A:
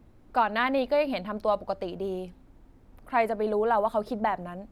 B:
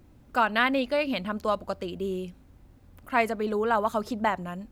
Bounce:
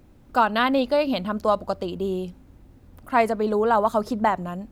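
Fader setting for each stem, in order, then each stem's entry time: -2.0 dB, +1.5 dB; 0.00 s, 0.00 s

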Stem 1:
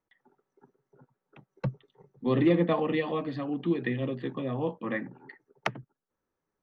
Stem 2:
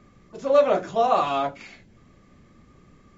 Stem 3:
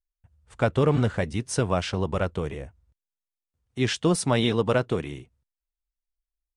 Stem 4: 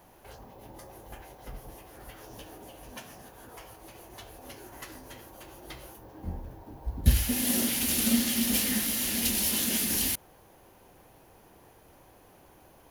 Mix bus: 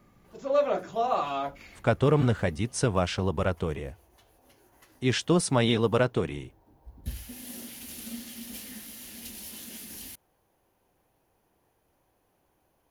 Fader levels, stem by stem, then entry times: mute, -6.5 dB, -1.0 dB, -14.5 dB; mute, 0.00 s, 1.25 s, 0.00 s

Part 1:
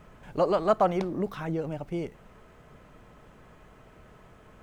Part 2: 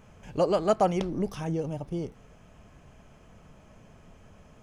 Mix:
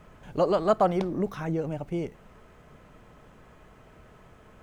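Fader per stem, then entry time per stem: 0.0 dB, -12.5 dB; 0.00 s, 0.00 s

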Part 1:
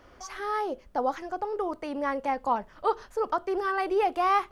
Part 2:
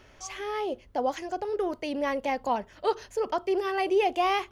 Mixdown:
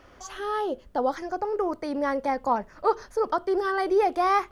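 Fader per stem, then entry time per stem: +1.0 dB, -6.5 dB; 0.00 s, 0.00 s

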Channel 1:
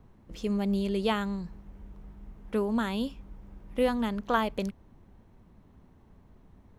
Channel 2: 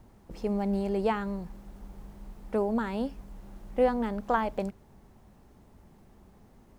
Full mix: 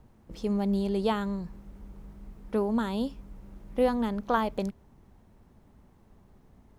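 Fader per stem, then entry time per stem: -3.0 dB, -6.5 dB; 0.00 s, 0.00 s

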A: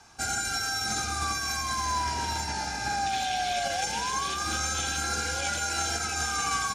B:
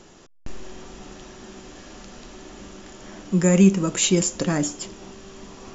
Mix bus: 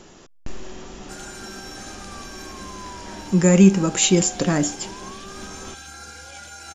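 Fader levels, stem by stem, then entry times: -10.0 dB, +2.5 dB; 0.90 s, 0.00 s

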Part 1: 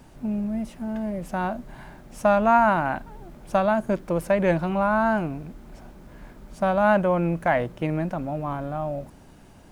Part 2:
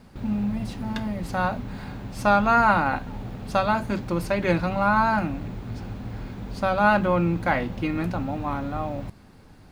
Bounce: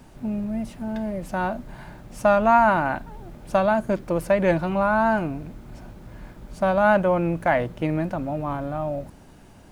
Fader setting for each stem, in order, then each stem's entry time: +1.0 dB, -13.5 dB; 0.00 s, 0.00 s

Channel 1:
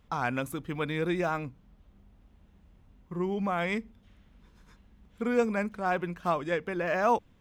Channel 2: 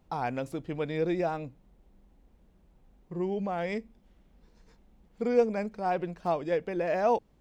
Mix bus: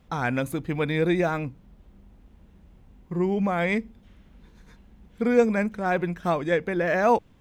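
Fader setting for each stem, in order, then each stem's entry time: +3.0 dB, +1.5 dB; 0.00 s, 0.00 s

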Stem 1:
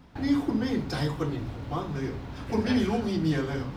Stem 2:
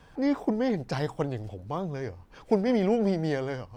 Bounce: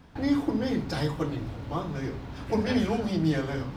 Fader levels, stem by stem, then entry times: -0.5 dB, -7.5 dB; 0.00 s, 0.00 s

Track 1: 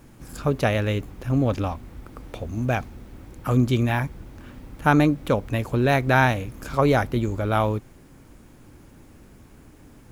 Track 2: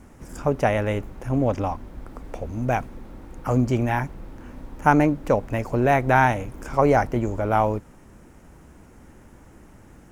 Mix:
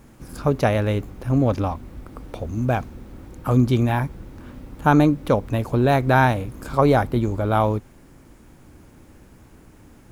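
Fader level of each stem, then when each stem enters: -0.5 dB, -6.5 dB; 0.00 s, 0.00 s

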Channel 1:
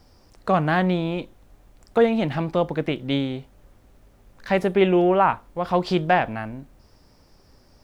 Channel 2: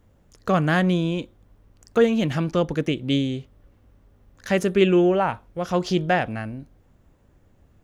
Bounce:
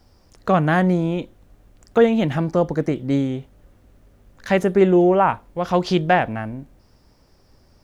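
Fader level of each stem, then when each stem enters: -2.0 dB, -3.5 dB; 0.00 s, 0.00 s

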